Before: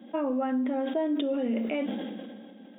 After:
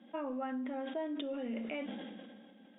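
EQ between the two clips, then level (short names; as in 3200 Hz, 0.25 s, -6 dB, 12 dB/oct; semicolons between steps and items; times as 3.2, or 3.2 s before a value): air absorption 150 m; bell 340 Hz -8.5 dB 2.8 oct; -2.5 dB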